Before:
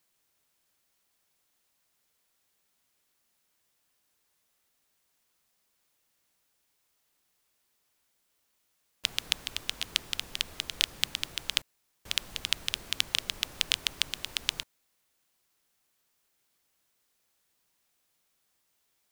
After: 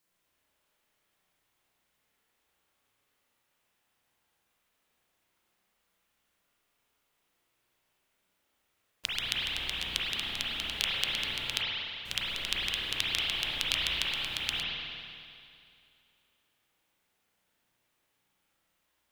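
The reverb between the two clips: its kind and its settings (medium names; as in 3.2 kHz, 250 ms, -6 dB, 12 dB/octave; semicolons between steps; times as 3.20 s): spring tank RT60 2.4 s, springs 33/49 ms, chirp 75 ms, DRR -7.5 dB; trim -5 dB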